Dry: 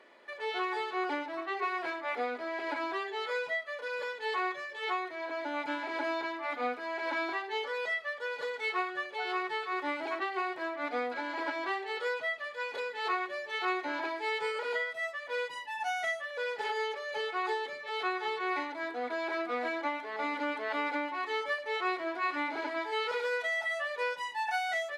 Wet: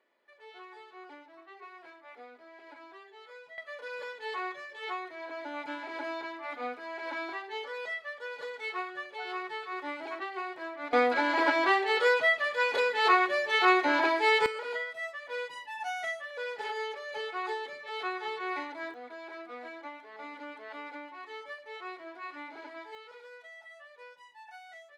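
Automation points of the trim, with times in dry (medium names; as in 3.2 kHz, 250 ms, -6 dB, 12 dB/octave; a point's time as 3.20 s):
-16 dB
from 3.58 s -3.5 dB
from 10.93 s +9 dB
from 14.46 s -2 dB
from 18.94 s -10 dB
from 22.95 s -17.5 dB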